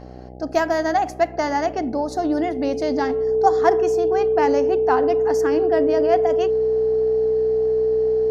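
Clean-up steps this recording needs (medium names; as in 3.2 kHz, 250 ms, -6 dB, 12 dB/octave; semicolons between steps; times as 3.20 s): de-hum 62.7 Hz, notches 13; band-stop 440 Hz, Q 30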